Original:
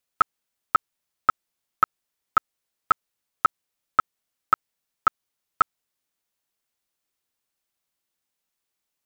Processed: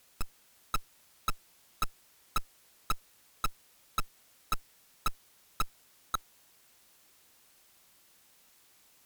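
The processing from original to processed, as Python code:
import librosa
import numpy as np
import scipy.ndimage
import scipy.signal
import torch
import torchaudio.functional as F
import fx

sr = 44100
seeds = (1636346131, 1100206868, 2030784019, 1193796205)

y = fx.tube_stage(x, sr, drive_db=34.0, bias=0.6)
y = y + 10.0 ** (-9.5 / 20.0) * np.pad(y, (int(533 * sr / 1000.0), 0))[:len(y)]
y = fx.fold_sine(y, sr, drive_db=14, ceiling_db=-27.5)
y = y * 10.0 ** (4.0 / 20.0)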